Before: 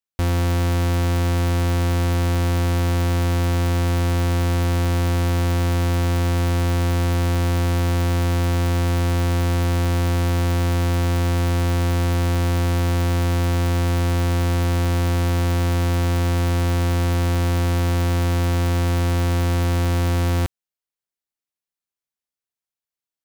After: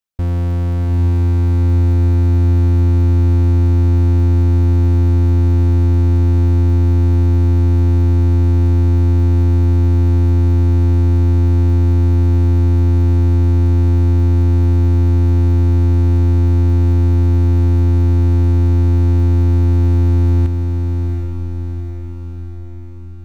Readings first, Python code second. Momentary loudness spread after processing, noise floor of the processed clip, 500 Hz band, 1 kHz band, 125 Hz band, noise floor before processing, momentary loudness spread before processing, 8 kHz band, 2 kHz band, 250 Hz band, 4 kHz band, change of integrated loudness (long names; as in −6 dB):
6 LU, −26 dBFS, 0.0 dB, −5.5 dB, +8.0 dB, below −85 dBFS, 0 LU, below −10 dB, −9.0 dB, +5.0 dB, −11.0 dB, +7.0 dB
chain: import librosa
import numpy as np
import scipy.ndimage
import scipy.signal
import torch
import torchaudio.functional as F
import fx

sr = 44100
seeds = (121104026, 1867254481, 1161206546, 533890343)

y = fx.envelope_sharpen(x, sr, power=1.5)
y = fx.echo_diffused(y, sr, ms=771, feedback_pct=56, wet_db=-5.5)
y = y * 10.0 ** (3.0 / 20.0)